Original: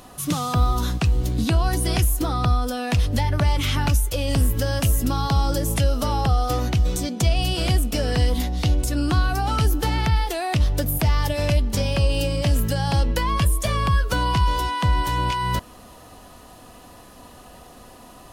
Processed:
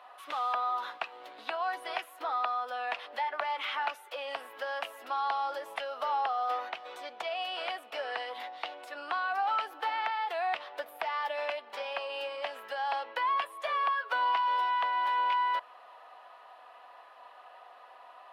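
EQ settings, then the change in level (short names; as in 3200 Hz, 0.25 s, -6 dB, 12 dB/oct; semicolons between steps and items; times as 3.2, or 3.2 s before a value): HPF 700 Hz 24 dB/oct; air absorption 480 m; 0.0 dB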